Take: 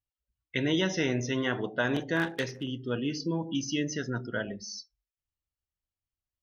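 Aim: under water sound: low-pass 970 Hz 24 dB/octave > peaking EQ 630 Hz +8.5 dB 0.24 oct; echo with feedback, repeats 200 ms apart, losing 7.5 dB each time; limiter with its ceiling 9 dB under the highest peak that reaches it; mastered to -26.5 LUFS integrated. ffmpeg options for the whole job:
-af "alimiter=level_in=1.06:limit=0.0631:level=0:latency=1,volume=0.944,lowpass=f=970:w=0.5412,lowpass=f=970:w=1.3066,equalizer=f=630:t=o:w=0.24:g=8.5,aecho=1:1:200|400|600|800|1000:0.422|0.177|0.0744|0.0312|0.0131,volume=2.66"

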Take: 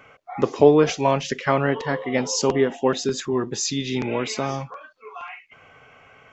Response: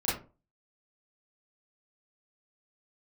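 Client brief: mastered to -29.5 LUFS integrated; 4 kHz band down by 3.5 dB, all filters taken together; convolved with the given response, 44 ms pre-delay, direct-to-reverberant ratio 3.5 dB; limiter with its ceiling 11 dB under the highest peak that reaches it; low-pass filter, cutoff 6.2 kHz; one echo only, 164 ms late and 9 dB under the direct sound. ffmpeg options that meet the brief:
-filter_complex "[0:a]lowpass=6200,equalizer=f=4000:t=o:g=-3.5,alimiter=limit=0.224:level=0:latency=1,aecho=1:1:164:0.355,asplit=2[s0][s1];[1:a]atrim=start_sample=2205,adelay=44[s2];[s1][s2]afir=irnorm=-1:irlink=0,volume=0.251[s3];[s0][s3]amix=inputs=2:normalize=0,volume=0.501"

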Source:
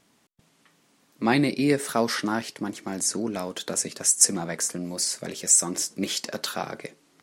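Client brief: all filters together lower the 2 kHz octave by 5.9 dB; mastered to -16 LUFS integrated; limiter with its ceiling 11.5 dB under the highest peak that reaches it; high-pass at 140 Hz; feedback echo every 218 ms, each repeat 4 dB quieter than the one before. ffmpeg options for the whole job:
-af "highpass=140,equalizer=f=2000:t=o:g=-7.5,alimiter=limit=0.168:level=0:latency=1,aecho=1:1:218|436|654|872|1090|1308|1526|1744|1962:0.631|0.398|0.25|0.158|0.0994|0.0626|0.0394|0.0249|0.0157,volume=3.16"

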